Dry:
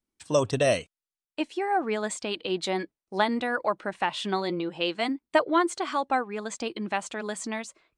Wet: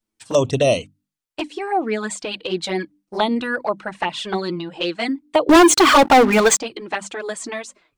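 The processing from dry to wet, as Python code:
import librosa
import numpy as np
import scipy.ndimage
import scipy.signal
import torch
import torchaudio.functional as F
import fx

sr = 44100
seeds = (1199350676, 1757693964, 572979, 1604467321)

y = fx.hum_notches(x, sr, base_hz=50, count=6)
y = fx.env_flanger(y, sr, rest_ms=9.3, full_db=-22.0)
y = fx.leveller(y, sr, passes=5, at=(5.49, 6.6))
y = y * librosa.db_to_amplitude(8.0)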